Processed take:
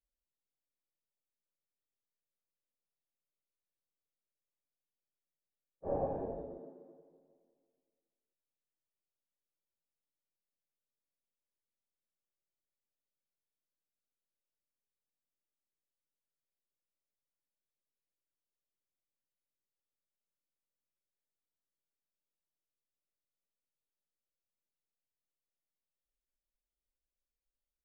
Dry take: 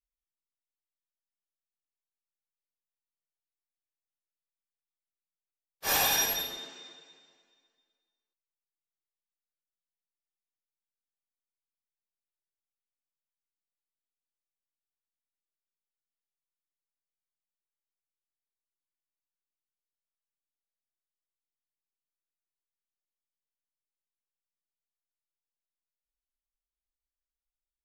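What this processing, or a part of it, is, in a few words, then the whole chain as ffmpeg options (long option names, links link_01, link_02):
under water: -af "lowpass=frequency=590:width=0.5412,lowpass=frequency=590:width=1.3066,equalizer=frequency=560:width_type=o:width=0.22:gain=6.5,volume=2dB"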